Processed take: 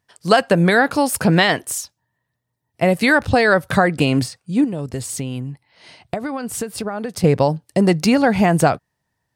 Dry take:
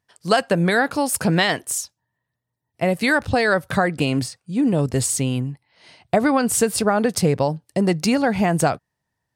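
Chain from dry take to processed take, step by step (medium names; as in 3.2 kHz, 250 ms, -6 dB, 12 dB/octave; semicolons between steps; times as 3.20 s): dynamic bell 7.9 kHz, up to -5 dB, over -34 dBFS, Q 0.74; 4.64–7.24 s: compression 6:1, threshold -27 dBFS, peak gain reduction 13.5 dB; trim +4 dB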